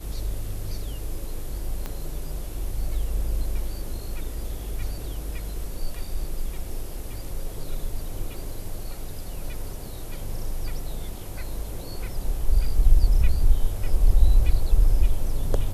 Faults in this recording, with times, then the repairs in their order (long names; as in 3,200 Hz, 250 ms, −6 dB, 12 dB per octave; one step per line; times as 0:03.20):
0:01.86: click −18 dBFS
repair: click removal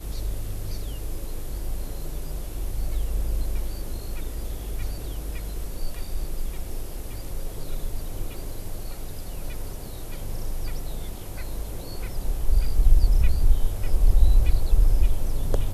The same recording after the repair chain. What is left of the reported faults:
0:01.86: click